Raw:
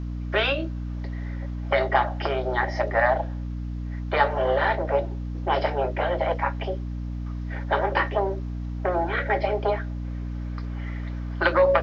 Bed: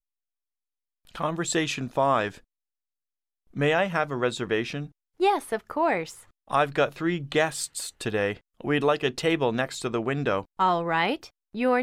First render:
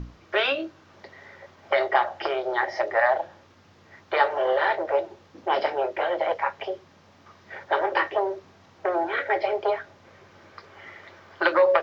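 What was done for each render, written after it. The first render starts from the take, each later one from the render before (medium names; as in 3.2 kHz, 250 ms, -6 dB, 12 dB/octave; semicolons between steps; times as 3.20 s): hum notches 60/120/180/240/300 Hz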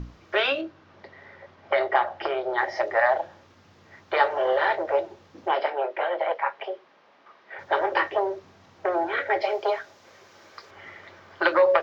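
0.61–2.58 s: distance through air 130 m; 5.51–7.59 s: band-pass 420–3300 Hz; 9.41–10.71 s: tone controls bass -10 dB, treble +9 dB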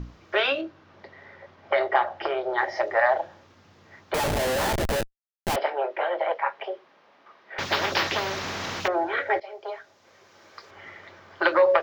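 4.14–5.56 s: Schmitt trigger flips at -27 dBFS; 7.58–8.88 s: spectrum-flattening compressor 4:1; 9.40–10.70 s: fade in, from -18 dB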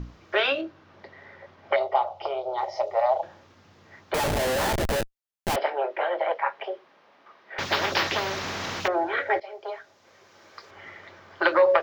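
1.76–3.23 s: static phaser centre 700 Hz, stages 4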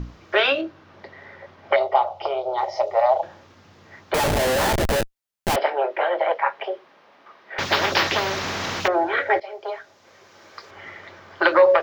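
trim +4.5 dB; peak limiter -3 dBFS, peak gain reduction 3 dB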